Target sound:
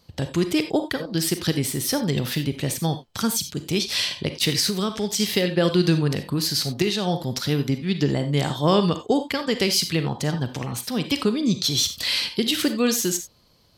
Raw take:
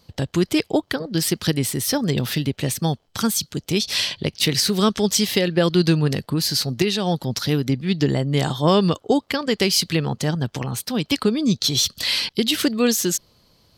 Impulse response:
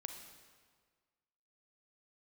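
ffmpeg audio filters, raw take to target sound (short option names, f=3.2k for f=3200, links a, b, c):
-filter_complex "[1:a]atrim=start_sample=2205,atrim=end_sample=4410[a];[0:a][a]afir=irnorm=-1:irlink=0,asettb=1/sr,asplit=3[b][c][d];[b]atrim=end=4.694[e];[c]atrim=start=4.69:end=5.2,asetpts=PTS-STARTPTS,afade=t=in:d=0.004:c=qsin,afade=t=out:st=0.506:d=0.004:c=qsin,acompressor=threshold=-24dB:ratio=3[f];[d]atrim=start=5.196[g];[e][f]acrossfade=d=0.004:c1=hsin:c2=qsin[h];[h][g]acrossfade=d=0.004:c1=qsin:c2=hsin,volume=1.5dB"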